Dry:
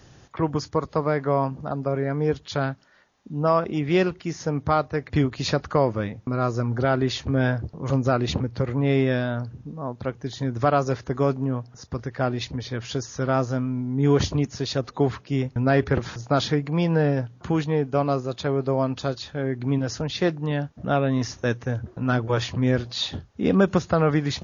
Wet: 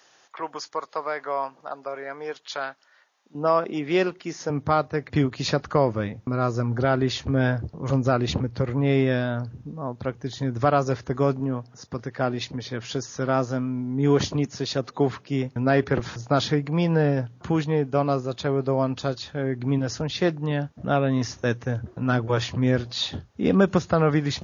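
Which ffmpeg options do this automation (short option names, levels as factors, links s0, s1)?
-af "asetnsamples=n=441:p=0,asendcmd='3.35 highpass f 250;4.5 highpass f 99;5.68 highpass f 45;11.4 highpass f 130;15.99 highpass f 60',highpass=720"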